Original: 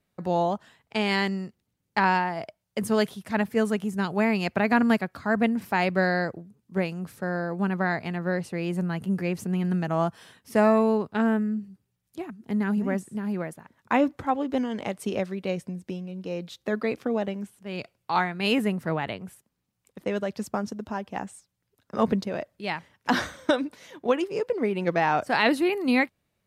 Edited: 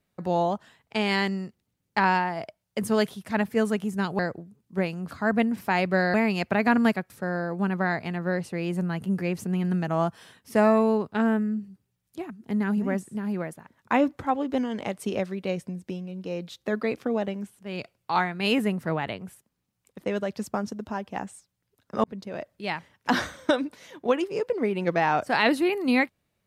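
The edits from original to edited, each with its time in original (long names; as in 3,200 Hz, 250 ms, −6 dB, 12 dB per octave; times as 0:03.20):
0:04.19–0:05.15: swap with 0:06.18–0:07.10
0:22.04–0:22.52: fade in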